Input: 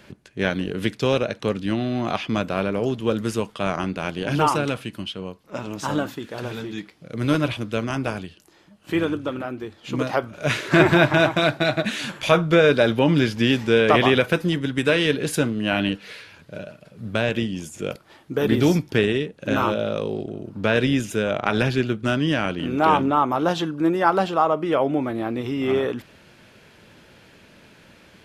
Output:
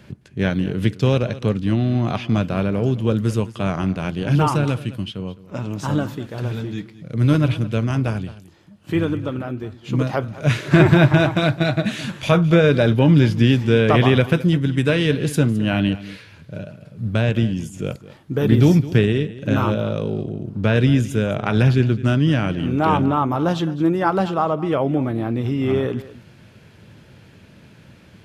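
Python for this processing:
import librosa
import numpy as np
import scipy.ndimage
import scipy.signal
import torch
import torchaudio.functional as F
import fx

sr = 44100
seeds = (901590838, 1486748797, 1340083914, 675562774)

p1 = fx.peak_eq(x, sr, hz=110.0, db=13.0, octaves=2.0)
p2 = p1 + fx.echo_single(p1, sr, ms=212, db=-17.0, dry=0)
y = F.gain(torch.from_numpy(p2), -2.0).numpy()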